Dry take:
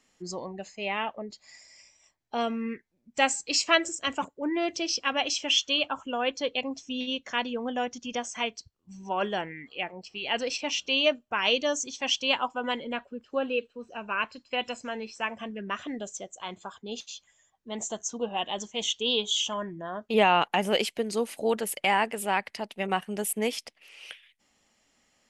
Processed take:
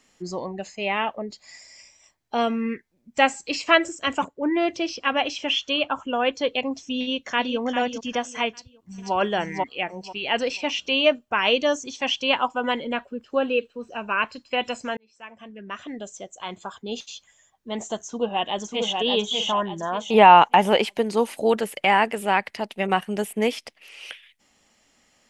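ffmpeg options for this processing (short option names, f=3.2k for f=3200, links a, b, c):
-filter_complex "[0:a]asettb=1/sr,asplit=3[a][b][c];[a]atrim=end=4.234[d];[b]atrim=start=4.23:end=6.25,asetpts=PTS-STARTPTS,afade=t=in:d=0.004:c=qsin,afade=t=out:st=2.016:d=0.004:c=qsin,highshelf=f=5.6k:g=-7.5[e];[c]atrim=start=6.246[f];[d][e]acrossfade=d=0.004:c1=hsin:c2=qsin[g];[g][f]acrossfade=d=0.004:c1=qsin:c2=hsin,asplit=2[h][i];[i]afade=t=in:st=6.99:d=0.01,afade=t=out:st=7.6:d=0.01,aecho=0:1:400|800|1200|1600:0.375837|0.112751|0.0338254|0.0101476[j];[h][j]amix=inputs=2:normalize=0,asplit=2[k][l];[l]afade=t=in:st=8.49:d=0.01,afade=t=out:st=9.14:d=0.01,aecho=0:1:490|980|1470:1|0.2|0.04[m];[k][m]amix=inputs=2:normalize=0,asplit=2[n][o];[o]afade=t=in:st=18.05:d=0.01,afade=t=out:st=18.94:d=0.01,aecho=0:1:590|1180|1770|2360:0.668344|0.200503|0.060151|0.0180453[p];[n][p]amix=inputs=2:normalize=0,asettb=1/sr,asplit=3[q][r][s];[q]atrim=end=19.484[t];[r]atrim=start=19.48:end=21.33,asetpts=PTS-STARTPTS,afade=t=in:d=0.004:c=qsin,afade=t=out:st=1.846:d=0.004:c=qsin,equalizer=f=910:w=3.1:g=8[u];[s]atrim=start=21.326[v];[t][u]acrossfade=d=0.004:c1=hsin:c2=qsin[w];[w][v]acrossfade=d=0.004:c1=qsin:c2=hsin,asplit=2[x][y];[x]atrim=end=14.97,asetpts=PTS-STARTPTS,afade=t=out:st=14.966:d=0.004:c=hsin[z];[y]atrim=start=14.97,asetpts=PTS-STARTPTS,afade=t=in:d=1.86[aa];[z][aa]concat=n=2:v=0:a=1,acrossover=split=3200[ab][ac];[ac]acompressor=threshold=-43dB:ratio=4:attack=1:release=60[ad];[ab][ad]amix=inputs=2:normalize=0,volume=6dB"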